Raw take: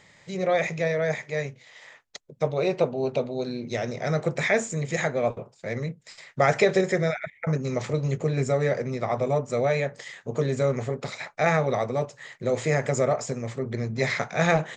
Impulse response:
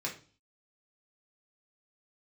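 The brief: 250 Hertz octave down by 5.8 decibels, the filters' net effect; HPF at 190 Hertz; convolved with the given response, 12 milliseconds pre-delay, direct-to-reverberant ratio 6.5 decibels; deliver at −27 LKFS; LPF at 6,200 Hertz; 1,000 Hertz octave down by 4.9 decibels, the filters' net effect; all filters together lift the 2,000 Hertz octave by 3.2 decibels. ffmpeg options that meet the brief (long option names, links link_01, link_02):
-filter_complex "[0:a]highpass=190,lowpass=6200,equalizer=frequency=250:width_type=o:gain=-5,equalizer=frequency=1000:width_type=o:gain=-9,equalizer=frequency=2000:width_type=o:gain=6,asplit=2[link_01][link_02];[1:a]atrim=start_sample=2205,adelay=12[link_03];[link_02][link_03]afir=irnorm=-1:irlink=0,volume=-10dB[link_04];[link_01][link_04]amix=inputs=2:normalize=0,volume=0.5dB"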